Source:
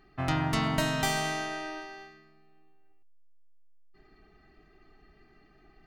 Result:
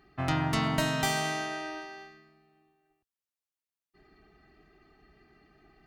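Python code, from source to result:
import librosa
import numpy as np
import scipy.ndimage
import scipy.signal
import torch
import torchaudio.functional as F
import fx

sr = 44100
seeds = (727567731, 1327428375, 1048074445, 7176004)

y = scipy.signal.sosfilt(scipy.signal.butter(2, 42.0, 'highpass', fs=sr, output='sos'), x)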